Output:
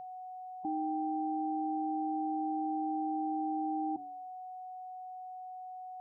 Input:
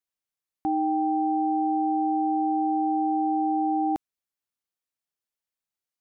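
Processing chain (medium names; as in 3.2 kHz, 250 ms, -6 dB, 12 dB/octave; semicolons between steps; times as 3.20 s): spectral gate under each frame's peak -15 dB strong; de-hum 96.18 Hz, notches 7; whistle 740 Hz -42 dBFS; peaking EQ 140 Hz +8.5 dB 0.24 oct; peak limiter -28 dBFS, peak gain reduction 10 dB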